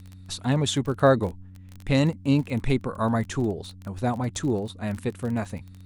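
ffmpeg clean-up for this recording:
-af "adeclick=t=4,bandreject=f=93.4:t=h:w=4,bandreject=f=186.8:t=h:w=4,bandreject=f=280.2:t=h:w=4"

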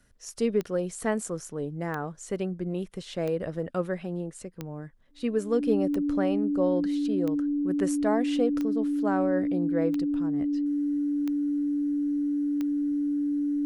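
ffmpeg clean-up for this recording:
-af "adeclick=t=4,bandreject=f=290:w=30"

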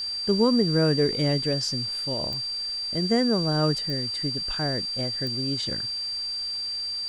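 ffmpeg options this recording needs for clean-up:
-af "adeclick=t=4,bandreject=f=4700:w=30,afwtdn=0.004"

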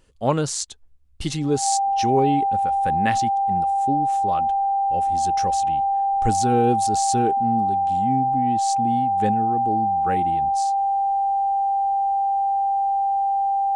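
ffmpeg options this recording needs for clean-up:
-af "bandreject=f=790:w=30"

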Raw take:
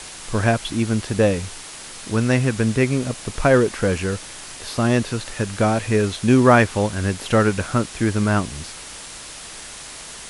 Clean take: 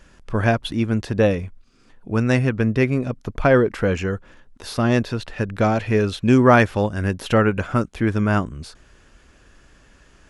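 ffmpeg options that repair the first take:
-af "afwtdn=0.02"

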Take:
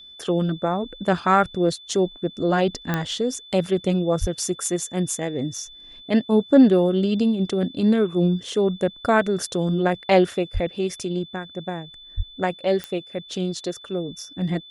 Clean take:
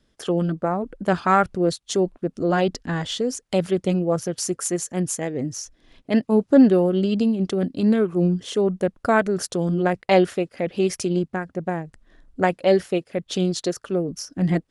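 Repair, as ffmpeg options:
-filter_complex "[0:a]adeclick=t=4,bandreject=f=3500:w=30,asplit=3[s0][s1][s2];[s0]afade=t=out:st=4.2:d=0.02[s3];[s1]highpass=f=140:w=0.5412,highpass=f=140:w=1.3066,afade=t=in:st=4.2:d=0.02,afade=t=out:st=4.32:d=0.02[s4];[s2]afade=t=in:st=4.32:d=0.02[s5];[s3][s4][s5]amix=inputs=3:normalize=0,asplit=3[s6][s7][s8];[s6]afade=t=out:st=10.53:d=0.02[s9];[s7]highpass=f=140:w=0.5412,highpass=f=140:w=1.3066,afade=t=in:st=10.53:d=0.02,afade=t=out:st=10.65:d=0.02[s10];[s8]afade=t=in:st=10.65:d=0.02[s11];[s9][s10][s11]amix=inputs=3:normalize=0,asplit=3[s12][s13][s14];[s12]afade=t=out:st=12.16:d=0.02[s15];[s13]highpass=f=140:w=0.5412,highpass=f=140:w=1.3066,afade=t=in:st=12.16:d=0.02,afade=t=out:st=12.28:d=0.02[s16];[s14]afade=t=in:st=12.28:d=0.02[s17];[s15][s16][s17]amix=inputs=3:normalize=0,asetnsamples=n=441:p=0,asendcmd='10.67 volume volume 4dB',volume=1"

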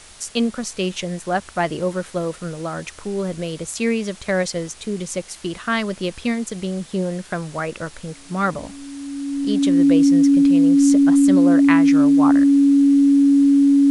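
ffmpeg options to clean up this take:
-af "bandreject=f=280:w=30,afftdn=nr=22:nf=-41"

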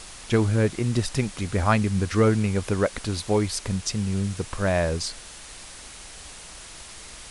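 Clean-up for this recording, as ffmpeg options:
-af "afwtdn=0.01"

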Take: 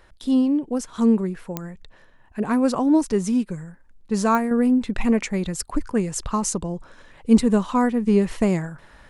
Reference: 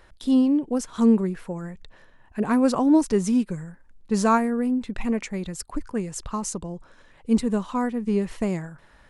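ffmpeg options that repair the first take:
-af "adeclick=t=4,asetnsamples=n=441:p=0,asendcmd='4.51 volume volume -5.5dB',volume=1"

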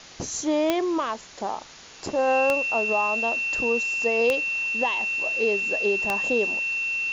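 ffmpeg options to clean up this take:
-af "adeclick=t=4,bandreject=f=2700:w=30,afwtdn=0.0079"

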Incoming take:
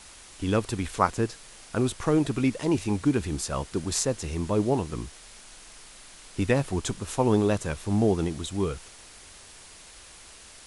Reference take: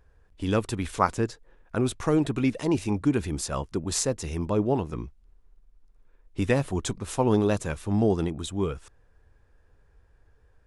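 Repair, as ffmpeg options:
-af "afwtdn=0.005"

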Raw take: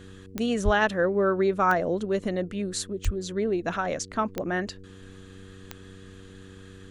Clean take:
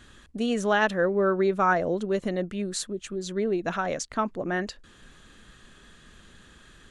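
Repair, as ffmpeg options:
-filter_complex "[0:a]adeclick=t=4,bandreject=f=95.1:t=h:w=4,bandreject=f=190.2:t=h:w=4,bandreject=f=285.3:t=h:w=4,bandreject=f=380.4:t=h:w=4,bandreject=f=475.5:t=h:w=4,asplit=3[s0][s1][s2];[s0]afade=t=out:st=0.64:d=0.02[s3];[s1]highpass=f=140:w=0.5412,highpass=f=140:w=1.3066,afade=t=in:st=0.64:d=0.02,afade=t=out:st=0.76:d=0.02[s4];[s2]afade=t=in:st=0.76:d=0.02[s5];[s3][s4][s5]amix=inputs=3:normalize=0,asplit=3[s6][s7][s8];[s6]afade=t=out:st=3.04:d=0.02[s9];[s7]highpass=f=140:w=0.5412,highpass=f=140:w=1.3066,afade=t=in:st=3.04:d=0.02,afade=t=out:st=3.16:d=0.02[s10];[s8]afade=t=in:st=3.16:d=0.02[s11];[s9][s10][s11]amix=inputs=3:normalize=0"

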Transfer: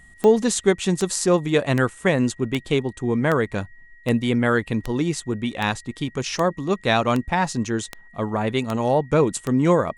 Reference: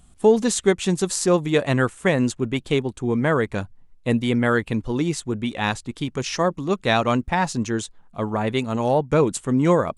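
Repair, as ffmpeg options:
-af "adeclick=t=4,bandreject=f=1900:w=30"

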